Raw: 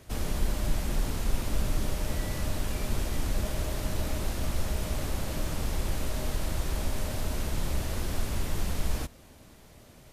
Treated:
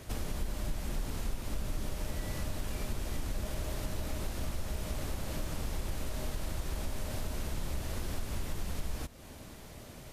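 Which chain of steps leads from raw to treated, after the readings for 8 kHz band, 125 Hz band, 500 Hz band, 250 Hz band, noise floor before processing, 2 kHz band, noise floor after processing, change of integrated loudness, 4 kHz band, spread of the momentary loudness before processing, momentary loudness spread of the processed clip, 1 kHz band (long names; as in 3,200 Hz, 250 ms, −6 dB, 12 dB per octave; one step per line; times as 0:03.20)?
−5.5 dB, −6.0 dB, −5.5 dB, −5.5 dB, −53 dBFS, −5.5 dB, −49 dBFS, −6.0 dB, −5.5 dB, 2 LU, 2 LU, −5.5 dB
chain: downward compressor 2.5 to 1, threshold −41 dBFS, peak gain reduction 15 dB
level +4.5 dB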